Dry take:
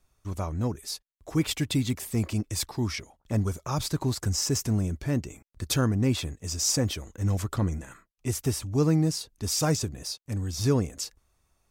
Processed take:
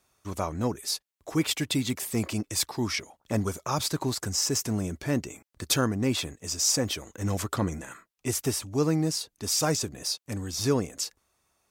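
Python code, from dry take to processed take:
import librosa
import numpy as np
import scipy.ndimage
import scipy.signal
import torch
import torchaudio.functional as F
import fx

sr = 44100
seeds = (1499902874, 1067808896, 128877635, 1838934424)

p1 = fx.highpass(x, sr, hz=290.0, slope=6)
p2 = fx.rider(p1, sr, range_db=4, speed_s=0.5)
p3 = p1 + F.gain(torch.from_numpy(p2), 0.0).numpy()
y = F.gain(torch.from_numpy(p3), -3.0).numpy()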